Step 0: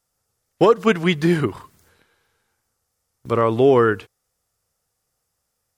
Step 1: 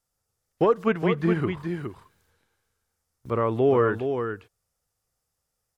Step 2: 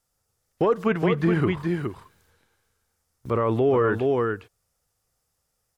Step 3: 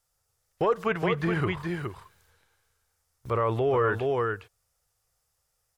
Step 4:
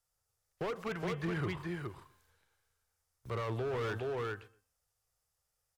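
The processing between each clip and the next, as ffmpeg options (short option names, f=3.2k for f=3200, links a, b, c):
-filter_complex "[0:a]lowshelf=f=72:g=7,aecho=1:1:415:0.447,acrossover=split=2700[a][b];[b]acompressor=threshold=-50dB:ratio=4:attack=1:release=60[c];[a][c]amix=inputs=2:normalize=0,volume=-6.5dB"
-af "alimiter=limit=-17dB:level=0:latency=1:release=11,volume=4.5dB"
-af "equalizer=f=250:t=o:w=1.2:g=-11"
-filter_complex "[0:a]bandreject=f=261.7:t=h:w=4,bandreject=f=523.4:t=h:w=4,bandreject=f=785.1:t=h:w=4,bandreject=f=1.0468k:t=h:w=4,bandreject=f=1.3085k:t=h:w=4,bandreject=f=1.5702k:t=h:w=4,bandreject=f=1.8319k:t=h:w=4,bandreject=f=2.0936k:t=h:w=4,bandreject=f=2.3553k:t=h:w=4,bandreject=f=2.617k:t=h:w=4,bandreject=f=2.8787k:t=h:w=4,bandreject=f=3.1404k:t=h:w=4,bandreject=f=3.4021k:t=h:w=4,bandreject=f=3.6638k:t=h:w=4,bandreject=f=3.9255k:t=h:w=4,bandreject=f=4.1872k:t=h:w=4,bandreject=f=4.4489k:t=h:w=4,bandreject=f=4.7106k:t=h:w=4,bandreject=f=4.9723k:t=h:w=4,bandreject=f=5.234k:t=h:w=4,bandreject=f=5.4957k:t=h:w=4,bandreject=f=5.7574k:t=h:w=4,bandreject=f=6.0191k:t=h:w=4,bandreject=f=6.2808k:t=h:w=4,bandreject=f=6.5425k:t=h:w=4,bandreject=f=6.8042k:t=h:w=4,bandreject=f=7.0659k:t=h:w=4,bandreject=f=7.3276k:t=h:w=4,bandreject=f=7.5893k:t=h:w=4,bandreject=f=7.851k:t=h:w=4,bandreject=f=8.1127k:t=h:w=4,bandreject=f=8.3744k:t=h:w=4,bandreject=f=8.6361k:t=h:w=4,bandreject=f=8.8978k:t=h:w=4,bandreject=f=9.1595k:t=h:w=4,bandreject=f=9.4212k:t=h:w=4,bandreject=f=9.6829k:t=h:w=4,acrossover=split=220[a][b];[b]asoftclip=type=hard:threshold=-27dB[c];[a][c]amix=inputs=2:normalize=0,asplit=2[d][e];[e]adelay=122,lowpass=f=1.6k:p=1,volume=-20dB,asplit=2[f][g];[g]adelay=122,lowpass=f=1.6k:p=1,volume=0.28[h];[d][f][h]amix=inputs=3:normalize=0,volume=-7.5dB"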